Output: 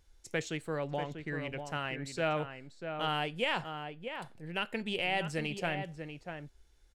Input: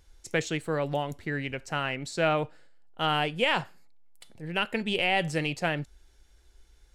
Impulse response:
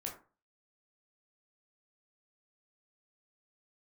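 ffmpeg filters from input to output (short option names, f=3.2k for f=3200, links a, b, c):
-filter_complex "[0:a]asplit=2[a][b];[b]adelay=641.4,volume=-7dB,highshelf=f=4k:g=-14.4[c];[a][c]amix=inputs=2:normalize=0,asettb=1/sr,asplit=3[d][e][f];[d]atrim=end=0.824[g];[e]atrim=start=0.82:end=1.29,asetpts=PTS-STARTPTS,afade=t=in:d=0.004:c=qsin,afade=t=out:st=0.466:d=0.004:c=qsin,adynamicsmooth=sensitivity=7.5:basefreq=5.5k[h];[f]atrim=start=1.286[i];[g][h]acrossfade=d=0.004:c1=hsin:c2=qsin[j];[j][i]acrossfade=d=0.004:c1=qsin:c2=hsin,volume=-6.5dB"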